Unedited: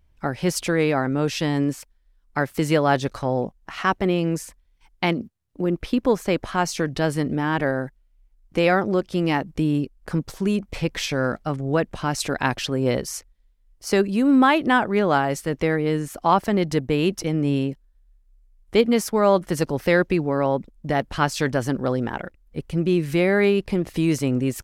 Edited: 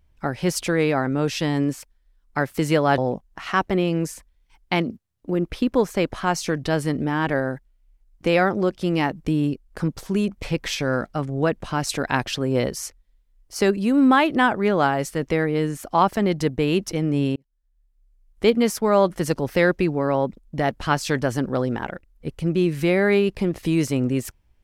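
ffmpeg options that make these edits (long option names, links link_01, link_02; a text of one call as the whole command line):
ffmpeg -i in.wav -filter_complex "[0:a]asplit=3[link_01][link_02][link_03];[link_01]atrim=end=2.982[link_04];[link_02]atrim=start=3.288:end=17.67,asetpts=PTS-STARTPTS,afade=type=out:start_time=14.378:duration=0.004:curve=hsin[link_05];[link_03]atrim=start=17.67,asetpts=PTS-STARTPTS,afade=type=in:duration=1.1[link_06];[link_05][link_06]concat=n=2:v=0:a=1[link_07];[link_04][link_07]acrossfade=duration=0.004:curve1=hsin:curve2=hsin" out.wav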